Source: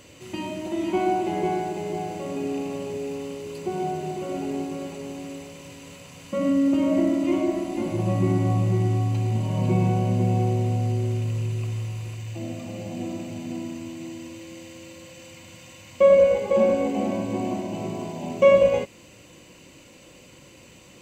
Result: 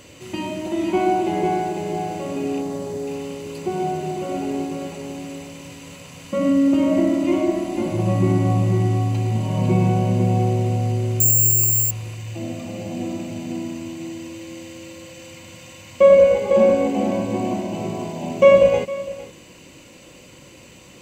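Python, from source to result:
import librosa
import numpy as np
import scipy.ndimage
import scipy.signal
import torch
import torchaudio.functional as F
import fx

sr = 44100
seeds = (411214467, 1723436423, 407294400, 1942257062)

y = fx.peak_eq(x, sr, hz=2600.0, db=-12.0, octaves=0.51, at=(2.61, 3.07))
y = y + 10.0 ** (-17.0 / 20.0) * np.pad(y, (int(458 * sr / 1000.0), 0))[:len(y)]
y = fx.resample_bad(y, sr, factor=6, down='filtered', up='zero_stuff', at=(11.2, 11.91))
y = y * 10.0 ** (4.0 / 20.0)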